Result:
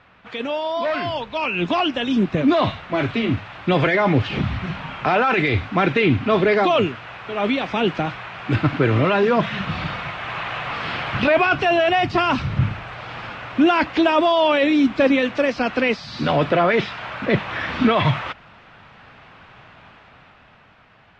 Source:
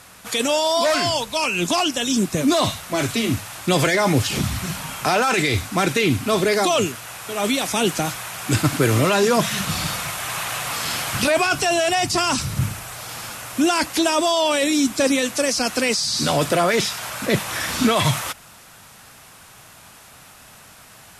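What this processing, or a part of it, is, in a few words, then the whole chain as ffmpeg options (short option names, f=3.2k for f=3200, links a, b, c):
action camera in a waterproof case: -af "lowpass=f=3k:w=0.5412,lowpass=f=3k:w=1.3066,dynaudnorm=f=140:g=21:m=11.5dB,volume=-4.5dB" -ar 44100 -c:a aac -b:a 64k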